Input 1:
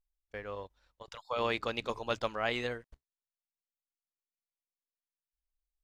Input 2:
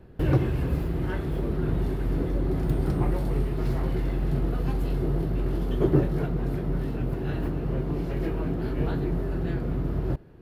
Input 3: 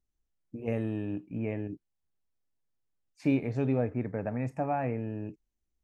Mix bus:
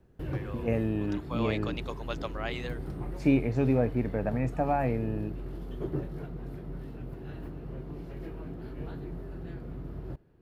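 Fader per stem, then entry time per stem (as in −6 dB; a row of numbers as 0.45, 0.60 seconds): −3.5, −12.0, +3.0 decibels; 0.00, 0.00, 0.00 seconds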